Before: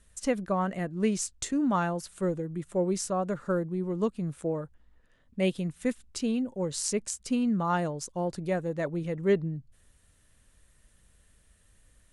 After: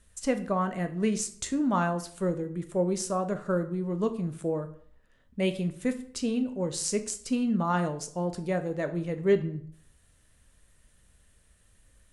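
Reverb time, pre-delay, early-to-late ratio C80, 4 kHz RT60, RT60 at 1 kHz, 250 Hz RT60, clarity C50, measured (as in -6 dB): 0.60 s, 12 ms, 17.0 dB, 0.45 s, 0.55 s, 0.55 s, 13.5 dB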